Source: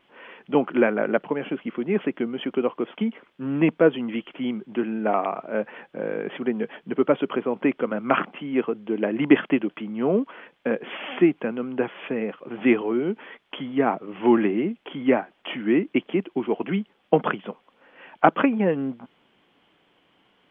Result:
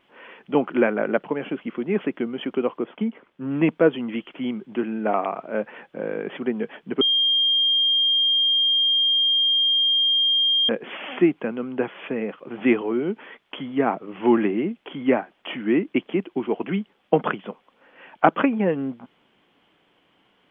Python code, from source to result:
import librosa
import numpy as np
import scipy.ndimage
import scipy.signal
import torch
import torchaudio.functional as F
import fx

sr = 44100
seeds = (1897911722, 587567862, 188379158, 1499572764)

y = fx.high_shelf(x, sr, hz=2300.0, db=-8.0, at=(2.78, 3.51))
y = fx.edit(y, sr, fx.bleep(start_s=7.01, length_s=3.68, hz=3210.0, db=-16.5), tone=tone)